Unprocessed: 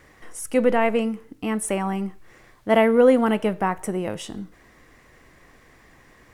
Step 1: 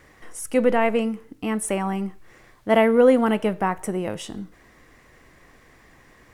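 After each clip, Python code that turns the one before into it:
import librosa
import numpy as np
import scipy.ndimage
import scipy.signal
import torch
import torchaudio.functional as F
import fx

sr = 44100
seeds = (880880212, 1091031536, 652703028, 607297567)

y = x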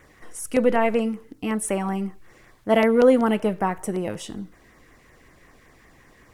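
y = fx.filter_lfo_notch(x, sr, shape='saw_down', hz=5.3, low_hz=490.0, high_hz=5200.0, q=2.2)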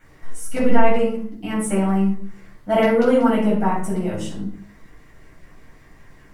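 y = fx.room_shoebox(x, sr, seeds[0], volume_m3=540.0, walls='furnished', distance_m=7.6)
y = y * librosa.db_to_amplitude(-9.0)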